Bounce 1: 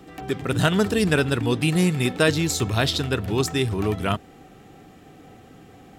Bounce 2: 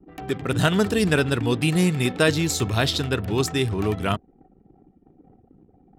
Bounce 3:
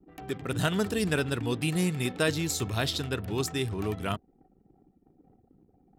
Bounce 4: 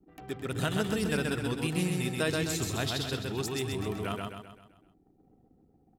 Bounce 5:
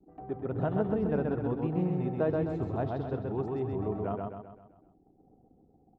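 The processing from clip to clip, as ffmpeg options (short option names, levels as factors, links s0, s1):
-af "anlmdn=0.398"
-af "crystalizer=i=0.5:c=0,volume=0.422"
-af "aecho=1:1:130|260|390|520|650|780:0.708|0.333|0.156|0.0735|0.0345|0.0162,volume=0.631"
-af "lowpass=f=760:t=q:w=1.6"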